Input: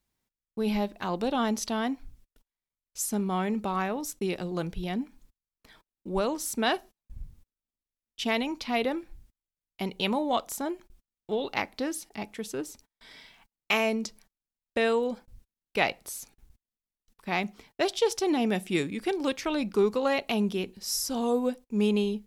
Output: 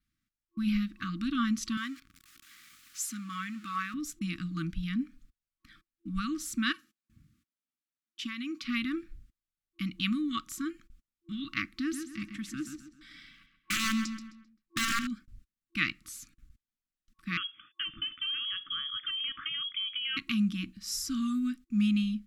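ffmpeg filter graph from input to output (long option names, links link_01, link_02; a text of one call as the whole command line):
ffmpeg -i in.wav -filter_complex "[0:a]asettb=1/sr,asplit=3[link_01][link_02][link_03];[link_01]atrim=end=1.774[link_04];[link_02]atrim=start=1.77:end=3.94,asetpts=PTS-STARTPTS,afade=type=in:duration=0.004:curve=qsin,afade=type=out:start_time=2.166:duration=0.004:curve=qsin,aeval=exprs='val(0)+0.5*0.01*sgn(val(0))':channel_layout=same,highpass=frequency=770:poles=1[link_05];[link_03]atrim=start=3.936[link_06];[link_04][link_05]acrossfade=duration=0.004:curve1=hsin:curve2=qsin[link_07];[link_07][link_06]acrossfade=duration=0.004:curve1=qsin:curve2=hsin,asettb=1/sr,asplit=3[link_08][link_09][link_10];[link_08]atrim=end=6.724[link_11];[link_09]atrim=start=6.72:end=8.64,asetpts=PTS-STARTPTS,afade=type=in:duration=0.004:curve=qsin,afade=type=out:start_time=1.916:duration=0.004:curve=qsin,highpass=210,acompressor=threshold=-31dB:ratio=5:attack=3.2:release=140:knee=1:detection=peak[link_12];[link_10]atrim=start=8.636[link_13];[link_11][link_12]acrossfade=duration=0.004:curve1=hsin:curve2=qsin[link_14];[link_14][link_13]acrossfade=duration=0.004:curve1=qsin:curve2=hsin,asettb=1/sr,asplit=3[link_15][link_16][link_17];[link_15]atrim=end=11.764[link_18];[link_16]atrim=start=11.76:end=15.07,asetpts=PTS-STARTPTS,afade=type=in:duration=0.004:curve=qsin,afade=type=out:start_time=3.306:duration=0.004:curve=qsin,aeval=exprs='(mod(9.44*val(0)+1,2)-1)/9.44':channel_layout=same,asplit=2[link_19][link_20];[link_20]adelay=131,lowpass=frequency=4200:poles=1,volume=-7.5dB,asplit=2[link_21][link_22];[link_22]adelay=131,lowpass=frequency=4200:poles=1,volume=0.39,asplit=2[link_23][link_24];[link_24]adelay=131,lowpass=frequency=4200:poles=1,volume=0.39,asplit=2[link_25][link_26];[link_26]adelay=131,lowpass=frequency=4200:poles=1,volume=0.39[link_27];[link_19][link_21][link_23][link_25][link_27]amix=inputs=5:normalize=0,atrim=end_sample=145971[link_28];[link_17]atrim=start=15.066[link_29];[link_18][link_28]acrossfade=duration=0.004:curve1=hsin:curve2=qsin[link_30];[link_30][link_29]acrossfade=duration=0.004:curve1=qsin:curve2=hsin,asettb=1/sr,asplit=3[link_31][link_32][link_33];[link_31]atrim=end=17.374[link_34];[link_32]atrim=start=17.37:end=20.17,asetpts=PTS-STARTPTS,afade=type=in:duration=0.004:curve=qsin,afade=type=out:start_time=2.796:duration=0.004:curve=qsin,acompressor=threshold=-28dB:ratio=10:attack=3.2:release=140:knee=1:detection=peak,lowpass=frequency=3000:width_type=q:width=0.5098,lowpass=frequency=3000:width_type=q:width=0.6013,lowpass=frequency=3000:width_type=q:width=0.9,lowpass=frequency=3000:width_type=q:width=2.563,afreqshift=-3500[link_35];[link_33]atrim=start=20.166[link_36];[link_34][link_35]acrossfade=duration=0.004:curve1=hsin:curve2=qsin[link_37];[link_37][link_36]acrossfade=duration=0.004:curve1=qsin:curve2=hsin,adynamicequalizer=threshold=0.002:dfrequency=7200:dqfactor=5.3:tfrequency=7200:tqfactor=5.3:attack=5:release=100:ratio=0.375:range=2.5:mode=boostabove:tftype=bell,afftfilt=real='re*(1-between(b*sr/4096,340,1100))':imag='im*(1-between(b*sr/4096,340,1100))':win_size=4096:overlap=0.75,aemphasis=mode=reproduction:type=cd" out.wav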